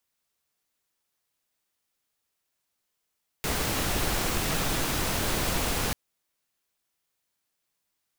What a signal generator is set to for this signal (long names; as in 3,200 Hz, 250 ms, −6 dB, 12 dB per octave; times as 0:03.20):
noise pink, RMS −27.5 dBFS 2.49 s